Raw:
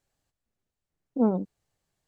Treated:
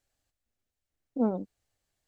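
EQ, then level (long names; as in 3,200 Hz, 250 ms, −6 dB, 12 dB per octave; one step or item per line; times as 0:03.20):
graphic EQ with 15 bands 160 Hz −10 dB, 400 Hz −4 dB, 1,000 Hz −5 dB
0.0 dB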